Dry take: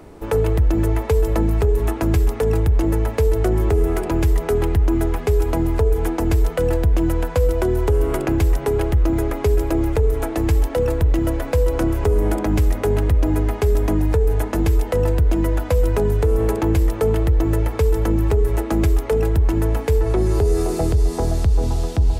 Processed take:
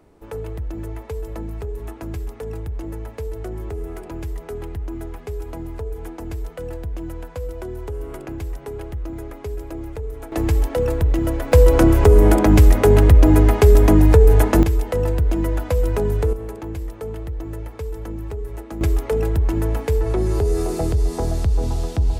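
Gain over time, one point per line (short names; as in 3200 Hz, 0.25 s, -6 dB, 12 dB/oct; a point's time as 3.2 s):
-12 dB
from 10.32 s -1 dB
from 11.52 s +6.5 dB
from 14.63 s -2 dB
from 16.33 s -12 dB
from 18.81 s -2 dB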